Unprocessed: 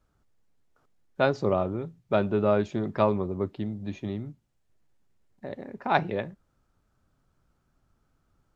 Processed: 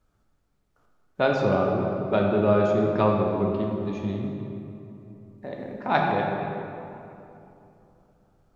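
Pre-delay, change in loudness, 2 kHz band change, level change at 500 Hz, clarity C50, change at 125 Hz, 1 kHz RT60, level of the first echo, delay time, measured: 8 ms, +3.5 dB, +3.5 dB, +4.0 dB, 1.0 dB, +4.5 dB, 2.8 s, no echo audible, no echo audible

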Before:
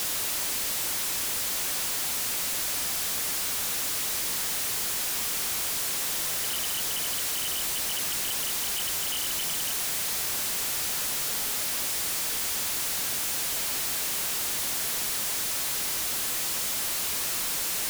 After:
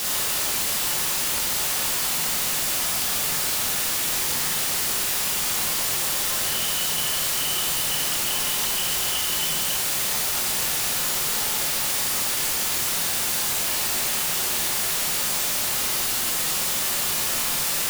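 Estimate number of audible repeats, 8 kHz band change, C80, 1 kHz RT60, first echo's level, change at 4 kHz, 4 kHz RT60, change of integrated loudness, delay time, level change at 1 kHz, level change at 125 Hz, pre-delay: no echo audible, +4.5 dB, 4.5 dB, 1.0 s, no echo audible, +5.5 dB, 0.65 s, +5.0 dB, no echo audible, +7.0 dB, +7.5 dB, 21 ms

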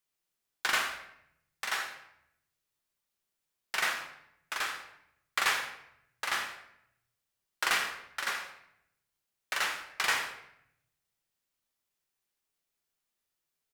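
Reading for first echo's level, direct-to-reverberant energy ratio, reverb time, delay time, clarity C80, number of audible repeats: −12.5 dB, 3.5 dB, 0.75 s, 81 ms, 9.5 dB, 1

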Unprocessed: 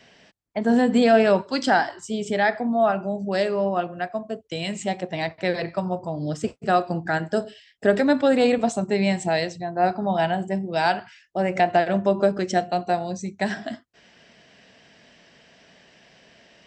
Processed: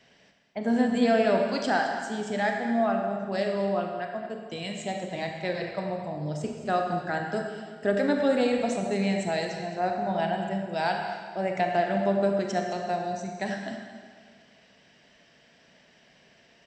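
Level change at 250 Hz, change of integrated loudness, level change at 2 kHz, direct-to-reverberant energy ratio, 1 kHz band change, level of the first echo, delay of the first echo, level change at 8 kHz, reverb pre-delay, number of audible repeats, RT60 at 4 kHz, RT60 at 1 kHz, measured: −4.5 dB, −5.0 dB, −5.0 dB, 2.5 dB, −5.0 dB, −12.5 dB, 215 ms, −5.0 dB, 29 ms, 1, 1.6 s, 1.8 s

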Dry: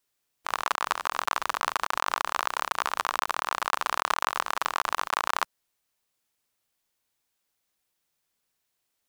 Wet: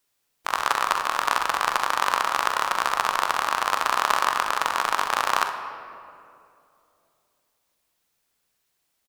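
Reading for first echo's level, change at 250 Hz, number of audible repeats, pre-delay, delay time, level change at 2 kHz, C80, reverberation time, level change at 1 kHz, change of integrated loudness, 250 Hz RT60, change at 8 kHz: −11.5 dB, +5.0 dB, 1, 15 ms, 44 ms, +5.0 dB, 8.5 dB, 2.6 s, +5.5 dB, +5.0 dB, 3.1 s, +4.5 dB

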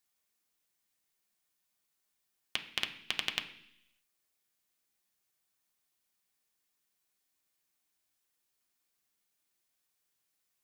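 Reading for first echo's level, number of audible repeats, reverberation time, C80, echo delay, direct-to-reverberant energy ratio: no echo audible, no echo audible, 0.70 s, 14.0 dB, no echo audible, 3.0 dB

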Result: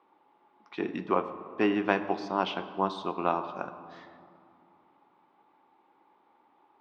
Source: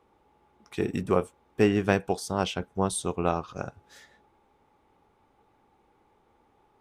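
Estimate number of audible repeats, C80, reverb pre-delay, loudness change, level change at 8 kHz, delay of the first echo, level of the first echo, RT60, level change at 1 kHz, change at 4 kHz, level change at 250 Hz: no echo audible, 13.0 dB, 4 ms, −2.5 dB, below −20 dB, no echo audible, no echo audible, 2.5 s, +2.0 dB, −2.5 dB, −3.0 dB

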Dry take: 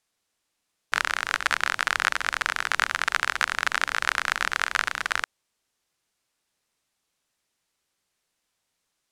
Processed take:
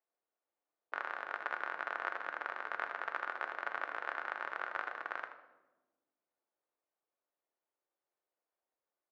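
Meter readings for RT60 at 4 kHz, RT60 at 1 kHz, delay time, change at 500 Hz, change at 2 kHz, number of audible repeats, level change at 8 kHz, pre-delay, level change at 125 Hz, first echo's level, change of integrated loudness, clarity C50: 0.70 s, 0.95 s, 79 ms, −5.5 dB, −15.0 dB, 1, below −35 dB, 3 ms, below −25 dB, −12.0 dB, −14.5 dB, 8.5 dB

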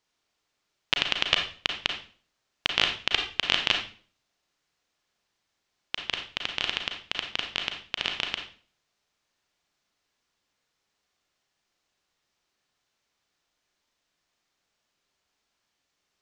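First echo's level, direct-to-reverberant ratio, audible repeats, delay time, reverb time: no echo audible, 3.0 dB, no echo audible, no echo audible, 0.45 s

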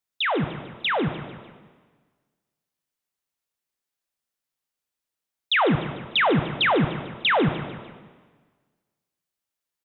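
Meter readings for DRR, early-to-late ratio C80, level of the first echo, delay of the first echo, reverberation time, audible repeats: 8.0 dB, 10.5 dB, −16.0 dB, 149 ms, 1.4 s, 3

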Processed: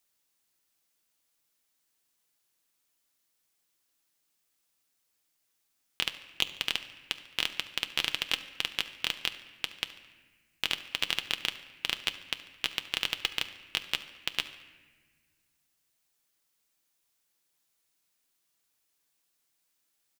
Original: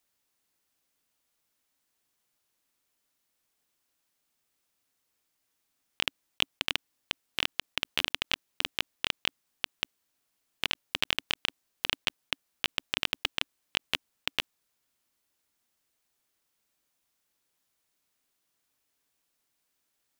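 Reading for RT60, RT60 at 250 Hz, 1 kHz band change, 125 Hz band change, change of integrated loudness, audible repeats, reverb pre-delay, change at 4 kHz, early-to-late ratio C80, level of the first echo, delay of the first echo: 1.4 s, 2.1 s, −2.0 dB, −2.5 dB, +0.5 dB, 2, 6 ms, +0.5 dB, 14.0 dB, −18.5 dB, 72 ms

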